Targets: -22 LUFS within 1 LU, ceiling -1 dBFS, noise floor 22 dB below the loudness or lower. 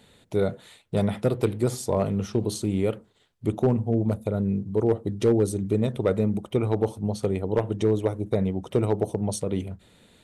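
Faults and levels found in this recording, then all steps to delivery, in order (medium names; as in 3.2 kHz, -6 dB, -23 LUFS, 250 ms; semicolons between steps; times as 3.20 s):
clipped samples 0.2%; clipping level -12.5 dBFS; loudness -26.0 LUFS; peak level -12.5 dBFS; loudness target -22.0 LUFS
-> clip repair -12.5 dBFS; trim +4 dB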